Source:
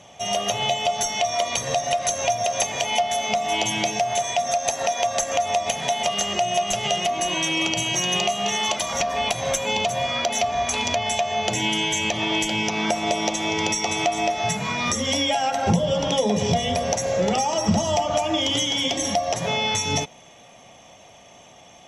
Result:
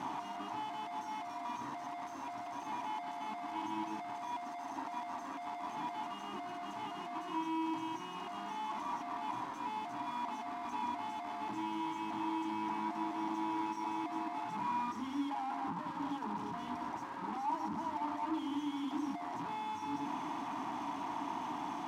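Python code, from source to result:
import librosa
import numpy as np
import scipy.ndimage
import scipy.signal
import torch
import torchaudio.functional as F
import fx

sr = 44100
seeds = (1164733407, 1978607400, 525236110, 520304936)

y = np.sign(x) * np.sqrt(np.mean(np.square(x)))
y = fx.double_bandpass(y, sr, hz=530.0, octaves=1.7)
y = F.gain(torch.from_numpy(y), -2.5).numpy()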